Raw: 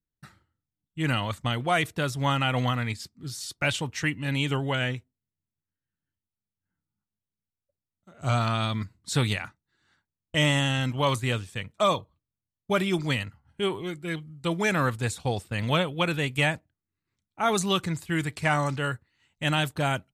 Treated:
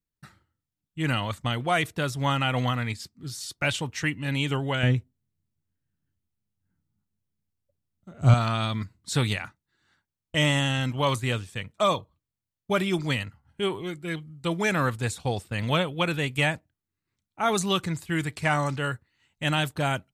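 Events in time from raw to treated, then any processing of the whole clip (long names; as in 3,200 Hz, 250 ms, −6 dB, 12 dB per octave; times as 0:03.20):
0:04.83–0:08.34: low-shelf EQ 390 Hz +11.5 dB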